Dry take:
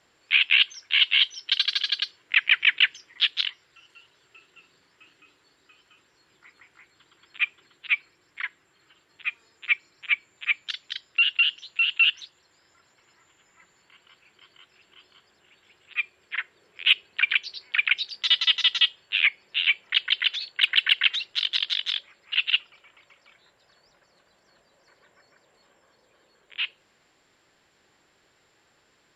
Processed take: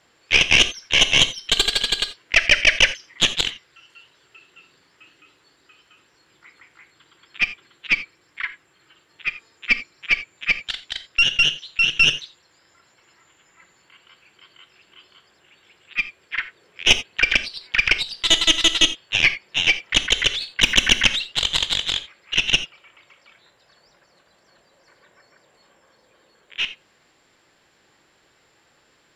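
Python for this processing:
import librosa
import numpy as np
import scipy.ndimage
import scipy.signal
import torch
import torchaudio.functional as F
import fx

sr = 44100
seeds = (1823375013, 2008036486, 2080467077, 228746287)

y = fx.tracing_dist(x, sr, depth_ms=0.053)
y = fx.rev_gated(y, sr, seeds[0], gate_ms=110, shape='flat', drr_db=11.0)
y = F.gain(torch.from_numpy(y), 4.0).numpy()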